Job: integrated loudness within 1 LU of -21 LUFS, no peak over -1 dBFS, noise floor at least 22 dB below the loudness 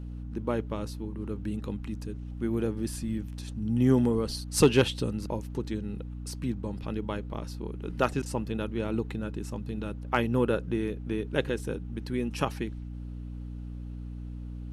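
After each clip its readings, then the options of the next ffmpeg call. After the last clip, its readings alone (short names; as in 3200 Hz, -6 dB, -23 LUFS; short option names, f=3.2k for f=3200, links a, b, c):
hum 60 Hz; harmonics up to 300 Hz; hum level -36 dBFS; loudness -31.0 LUFS; peak -10.0 dBFS; loudness target -21.0 LUFS
-> -af "bandreject=f=60:t=h:w=4,bandreject=f=120:t=h:w=4,bandreject=f=180:t=h:w=4,bandreject=f=240:t=h:w=4,bandreject=f=300:t=h:w=4"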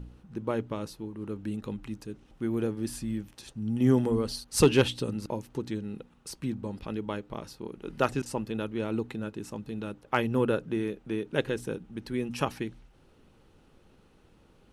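hum none; loudness -31.0 LUFS; peak -9.5 dBFS; loudness target -21.0 LUFS
-> -af "volume=10dB,alimiter=limit=-1dB:level=0:latency=1"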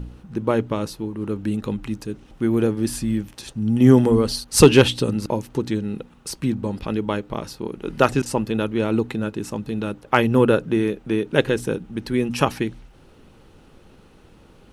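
loudness -21.5 LUFS; peak -1.0 dBFS; noise floor -51 dBFS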